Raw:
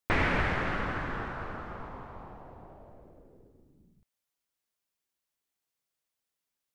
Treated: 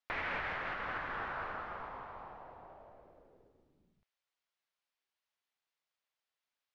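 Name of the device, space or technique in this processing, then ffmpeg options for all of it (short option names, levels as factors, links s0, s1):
DJ mixer with the lows and highs turned down: -filter_complex "[0:a]acrossover=split=530 5100:gain=0.224 1 0.0891[s0][s1][s2];[s0][s1][s2]amix=inputs=3:normalize=0,alimiter=level_in=1.78:limit=0.0631:level=0:latency=1:release=419,volume=0.562,volume=1.12"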